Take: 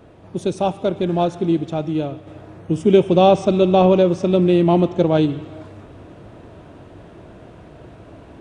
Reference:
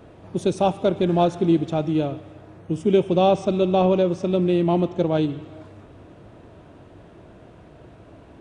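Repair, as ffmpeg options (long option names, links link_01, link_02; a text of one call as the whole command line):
ffmpeg -i in.wav -af "asetnsamples=nb_out_samples=441:pad=0,asendcmd='2.27 volume volume -5dB',volume=0dB" out.wav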